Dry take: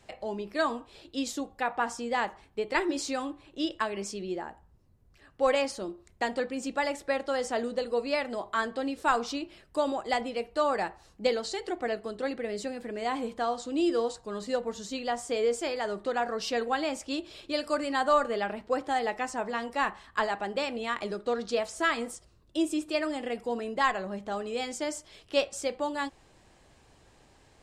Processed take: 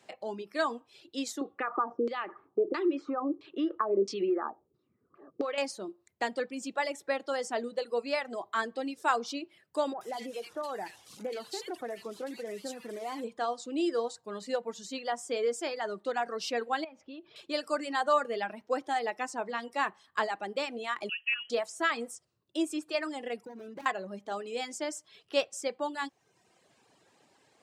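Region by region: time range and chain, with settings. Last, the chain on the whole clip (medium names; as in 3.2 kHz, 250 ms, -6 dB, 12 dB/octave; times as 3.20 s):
1.41–5.58 s: compression 10:1, threshold -34 dBFS + LFO low-pass saw down 1.5 Hz 390–5000 Hz + small resonant body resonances 350/1200 Hz, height 15 dB, ringing for 20 ms
9.93–13.24 s: one-bit delta coder 64 kbps, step -40.5 dBFS + compression 4:1, threshold -30 dBFS + bands offset in time lows, highs 80 ms, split 1.9 kHz
16.84–17.36 s: distance through air 300 m + compression 4:1, threshold -39 dBFS
21.09–21.50 s: frequency inversion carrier 3.1 kHz + bass shelf 230 Hz -10 dB
23.45–23.86 s: median filter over 41 samples + bass shelf 160 Hz +9.5 dB + compression 10:1, threshold -35 dBFS
whole clip: reverb removal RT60 0.91 s; Bessel high-pass 200 Hz, order 4; trim -1.5 dB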